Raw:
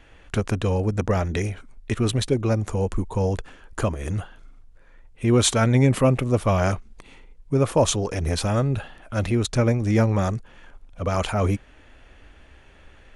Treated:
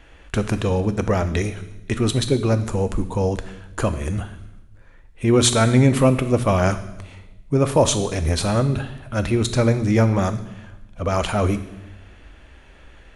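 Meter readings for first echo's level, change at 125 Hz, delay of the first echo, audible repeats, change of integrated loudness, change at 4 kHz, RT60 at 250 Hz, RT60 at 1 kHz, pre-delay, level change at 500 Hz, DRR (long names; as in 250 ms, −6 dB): no echo audible, +1.5 dB, no echo audible, no echo audible, +2.5 dB, +3.5 dB, 1.3 s, 0.95 s, 3 ms, +3.0 dB, 10.0 dB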